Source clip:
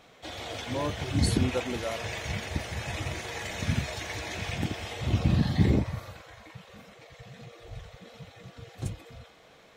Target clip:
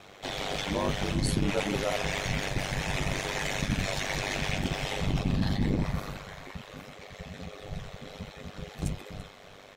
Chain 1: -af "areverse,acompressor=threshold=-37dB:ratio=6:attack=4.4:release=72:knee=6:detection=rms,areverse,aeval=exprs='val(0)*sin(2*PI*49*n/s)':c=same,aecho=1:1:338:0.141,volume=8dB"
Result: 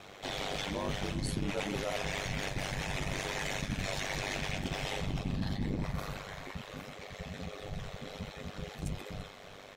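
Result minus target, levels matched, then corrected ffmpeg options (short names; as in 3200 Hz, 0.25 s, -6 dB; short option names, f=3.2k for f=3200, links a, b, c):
compressor: peak gain reduction +7 dB
-af "areverse,acompressor=threshold=-28.5dB:ratio=6:attack=4.4:release=72:knee=6:detection=rms,areverse,aeval=exprs='val(0)*sin(2*PI*49*n/s)':c=same,aecho=1:1:338:0.141,volume=8dB"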